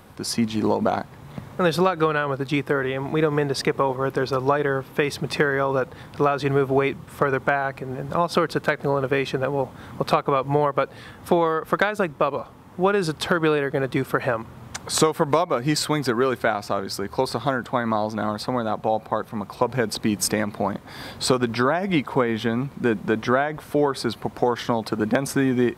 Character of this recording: noise floor -45 dBFS; spectral tilt -5.0 dB/oct

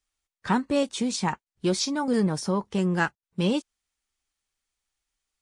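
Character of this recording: noise floor -94 dBFS; spectral tilt -5.0 dB/oct

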